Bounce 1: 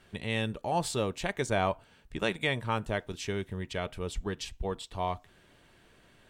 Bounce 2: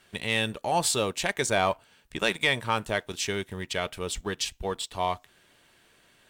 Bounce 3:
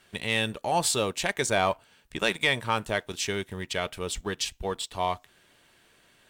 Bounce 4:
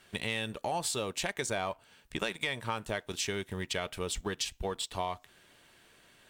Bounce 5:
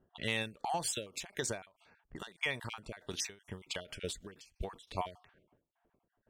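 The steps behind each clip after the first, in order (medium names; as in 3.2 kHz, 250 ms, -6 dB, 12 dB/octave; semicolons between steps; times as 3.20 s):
tilt EQ +2 dB/octave; waveshaping leveller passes 1; trim +1.5 dB
no audible change
compression 6:1, threshold -30 dBFS, peak gain reduction 10.5 dB
random holes in the spectrogram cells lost 32%; level-controlled noise filter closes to 410 Hz, open at -34.5 dBFS; endings held to a fixed fall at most 170 dB/s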